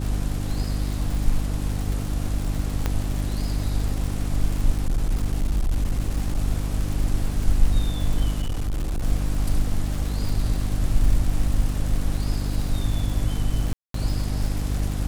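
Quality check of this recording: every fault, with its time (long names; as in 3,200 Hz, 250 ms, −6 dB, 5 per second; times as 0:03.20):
surface crackle 170 per second −28 dBFS
mains hum 50 Hz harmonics 6 −26 dBFS
0:02.86: click −10 dBFS
0:04.78–0:06.39: clipping −17.5 dBFS
0:08.41–0:09.03: clipping −21.5 dBFS
0:13.73–0:13.94: drop-out 213 ms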